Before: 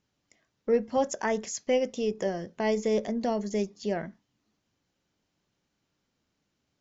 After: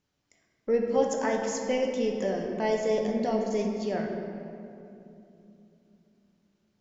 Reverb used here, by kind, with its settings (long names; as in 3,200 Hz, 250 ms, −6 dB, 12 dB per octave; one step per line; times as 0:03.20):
rectangular room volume 120 cubic metres, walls hard, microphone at 0.35 metres
level −2 dB